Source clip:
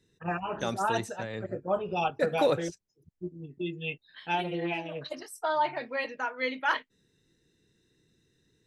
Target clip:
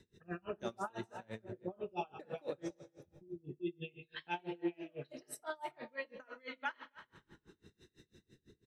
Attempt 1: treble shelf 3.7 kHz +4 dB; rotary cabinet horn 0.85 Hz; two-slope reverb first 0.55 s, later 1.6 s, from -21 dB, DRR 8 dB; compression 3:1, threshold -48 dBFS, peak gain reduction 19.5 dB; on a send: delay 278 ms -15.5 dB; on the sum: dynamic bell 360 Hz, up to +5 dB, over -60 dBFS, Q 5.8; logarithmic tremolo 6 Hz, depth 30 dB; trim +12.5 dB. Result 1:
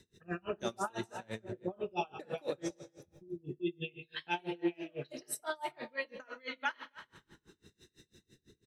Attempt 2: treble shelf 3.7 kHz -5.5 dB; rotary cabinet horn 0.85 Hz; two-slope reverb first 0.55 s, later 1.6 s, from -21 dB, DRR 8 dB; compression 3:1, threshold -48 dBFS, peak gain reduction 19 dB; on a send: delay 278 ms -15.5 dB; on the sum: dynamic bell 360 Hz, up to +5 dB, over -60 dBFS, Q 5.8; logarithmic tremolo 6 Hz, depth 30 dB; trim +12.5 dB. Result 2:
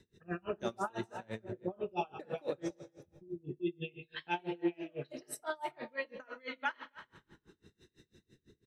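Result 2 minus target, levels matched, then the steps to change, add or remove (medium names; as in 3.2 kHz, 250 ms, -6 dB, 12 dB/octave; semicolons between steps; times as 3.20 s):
compression: peak gain reduction -4 dB
change: compression 3:1, threshold -54 dBFS, peak gain reduction 23 dB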